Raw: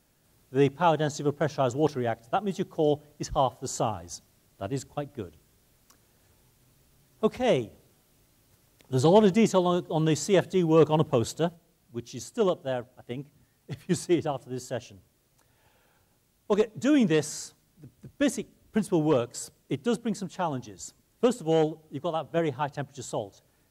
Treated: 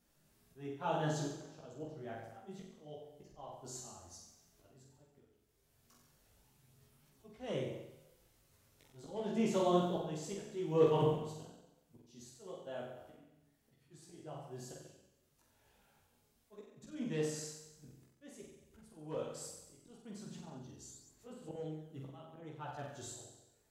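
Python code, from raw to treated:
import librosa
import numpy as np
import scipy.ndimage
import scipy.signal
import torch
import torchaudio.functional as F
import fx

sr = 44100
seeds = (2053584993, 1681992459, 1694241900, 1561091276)

y = fx.auto_swell(x, sr, attack_ms=722.0)
y = fx.room_flutter(y, sr, wall_m=7.8, rt60_s=0.92)
y = fx.chorus_voices(y, sr, voices=4, hz=0.53, base_ms=17, depth_ms=4.6, mix_pct=50)
y = y * 10.0 ** (-6.0 / 20.0)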